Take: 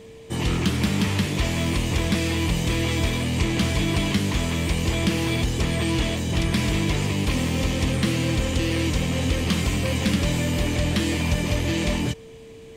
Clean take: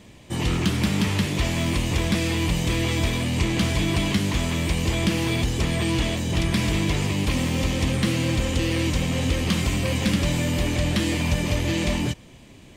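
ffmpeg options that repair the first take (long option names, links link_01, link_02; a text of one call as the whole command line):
ffmpeg -i in.wav -af "bandreject=frequency=450:width=30" out.wav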